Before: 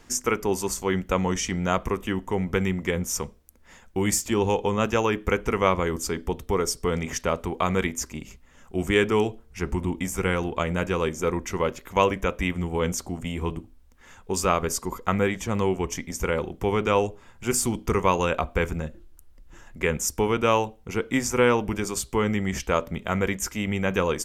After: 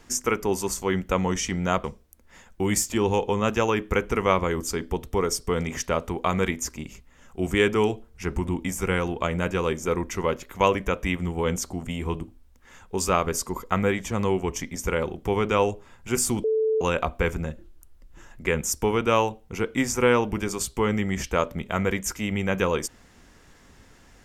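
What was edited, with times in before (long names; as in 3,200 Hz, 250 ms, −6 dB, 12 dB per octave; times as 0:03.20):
0:01.84–0:03.20: remove
0:17.80–0:18.17: beep over 439 Hz −19.5 dBFS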